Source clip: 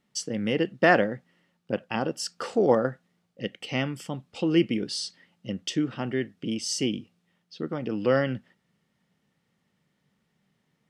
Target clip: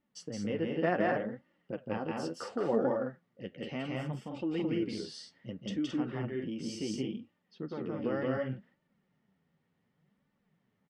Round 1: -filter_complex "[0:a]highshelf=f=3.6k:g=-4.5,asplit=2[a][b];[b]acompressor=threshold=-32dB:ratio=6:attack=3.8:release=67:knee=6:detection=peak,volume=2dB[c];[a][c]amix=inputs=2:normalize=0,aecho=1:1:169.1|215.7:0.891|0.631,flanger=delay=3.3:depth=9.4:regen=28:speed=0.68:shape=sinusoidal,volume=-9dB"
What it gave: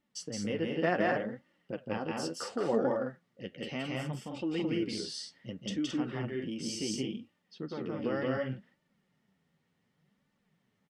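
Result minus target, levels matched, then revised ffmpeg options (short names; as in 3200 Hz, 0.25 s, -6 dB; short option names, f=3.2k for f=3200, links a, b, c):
8000 Hz band +7.0 dB
-filter_complex "[0:a]highshelf=f=3.6k:g=-16,asplit=2[a][b];[b]acompressor=threshold=-32dB:ratio=6:attack=3.8:release=67:knee=6:detection=peak,volume=2dB[c];[a][c]amix=inputs=2:normalize=0,aecho=1:1:169.1|215.7:0.891|0.631,flanger=delay=3.3:depth=9.4:regen=28:speed=0.68:shape=sinusoidal,volume=-9dB"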